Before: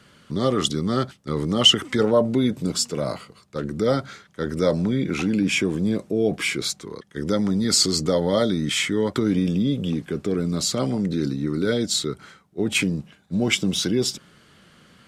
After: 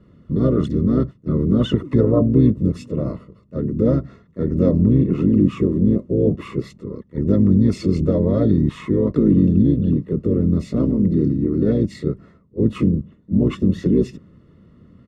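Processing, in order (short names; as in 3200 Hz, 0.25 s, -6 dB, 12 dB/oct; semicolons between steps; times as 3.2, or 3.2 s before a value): harmoniser -12 st -7 dB, +3 st -5 dB; running mean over 56 samples; gain +6.5 dB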